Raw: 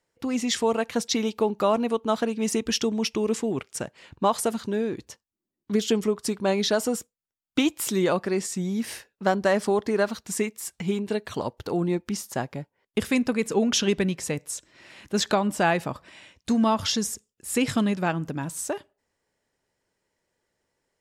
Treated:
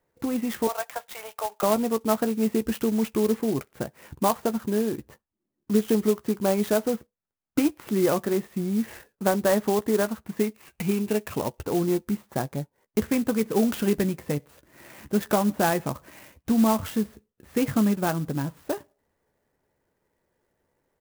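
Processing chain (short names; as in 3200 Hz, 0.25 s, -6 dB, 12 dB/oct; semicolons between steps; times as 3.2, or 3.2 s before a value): 0.67–1.63 elliptic band-pass 630–3700 Hz, stop band 40 dB; 10.54–11.63 bell 2600 Hz +14 dB 0.39 oct; in parallel at 0 dB: compressor, threshold -37 dBFS, peak gain reduction 19 dB; on the sum: air absorption 490 m; doubler 14 ms -11 dB; clock jitter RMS 0.06 ms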